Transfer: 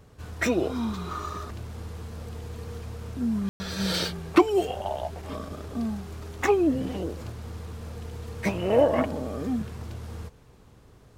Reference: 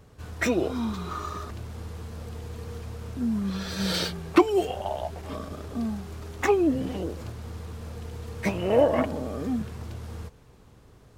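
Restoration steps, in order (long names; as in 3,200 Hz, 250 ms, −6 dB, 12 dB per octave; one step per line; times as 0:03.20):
ambience match 0:03.49–0:03.60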